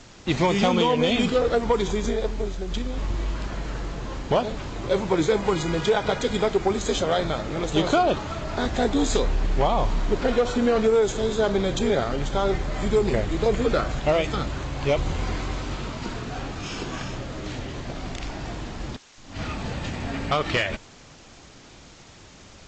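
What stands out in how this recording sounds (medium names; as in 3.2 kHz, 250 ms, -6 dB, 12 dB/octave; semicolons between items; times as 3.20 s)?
a quantiser's noise floor 8-bit, dither triangular; G.722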